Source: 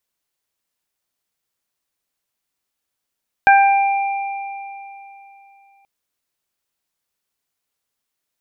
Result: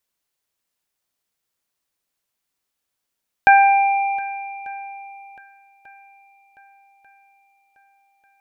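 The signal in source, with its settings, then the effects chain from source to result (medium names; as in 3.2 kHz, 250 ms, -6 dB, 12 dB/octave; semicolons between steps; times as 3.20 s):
additive tone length 2.38 s, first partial 792 Hz, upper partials -2.5/-9.5 dB, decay 3.14 s, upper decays 0.62/3.27 s, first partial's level -7.5 dB
shuffle delay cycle 1192 ms, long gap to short 1.5:1, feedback 44%, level -23.5 dB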